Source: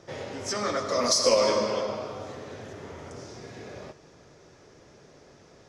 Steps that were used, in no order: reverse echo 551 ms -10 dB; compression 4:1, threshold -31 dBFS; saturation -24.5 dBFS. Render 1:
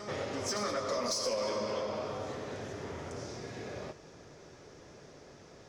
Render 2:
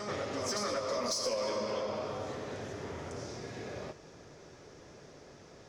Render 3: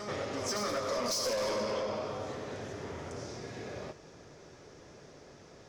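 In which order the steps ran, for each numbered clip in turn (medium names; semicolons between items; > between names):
compression > saturation > reverse echo; reverse echo > compression > saturation; saturation > reverse echo > compression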